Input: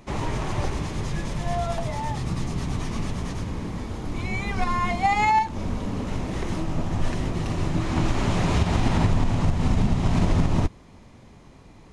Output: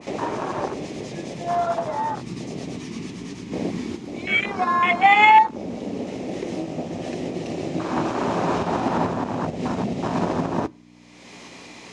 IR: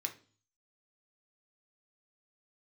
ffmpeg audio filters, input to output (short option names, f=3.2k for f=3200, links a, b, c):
-filter_complex "[0:a]afwtdn=0.0398,asplit=3[a][b][c];[a]afade=t=out:st=3.51:d=0.02[d];[b]acontrast=72,afade=t=in:st=3.51:d=0.02,afade=t=out:st=3.95:d=0.02[e];[c]afade=t=in:st=3.95:d=0.02[f];[d][e][f]amix=inputs=3:normalize=0,aexciter=amount=2.5:drive=6:freq=2k,acompressor=mode=upward:threshold=-28dB:ratio=2.5,aeval=exprs='val(0)+0.00794*(sin(2*PI*60*n/s)+sin(2*PI*2*60*n/s)/2+sin(2*PI*3*60*n/s)/3+sin(2*PI*4*60*n/s)/4+sin(2*PI*5*60*n/s)/5)':c=same,highpass=310,lowpass=5.6k,asplit=2[g][h];[1:a]atrim=start_sample=2205[i];[h][i]afir=irnorm=-1:irlink=0,volume=-15dB[j];[g][j]amix=inputs=2:normalize=0,adynamicequalizer=threshold=0.01:dfrequency=1600:dqfactor=0.7:tfrequency=1600:tqfactor=0.7:attack=5:release=100:ratio=0.375:range=2:mode=cutabove:tftype=highshelf,volume=6.5dB"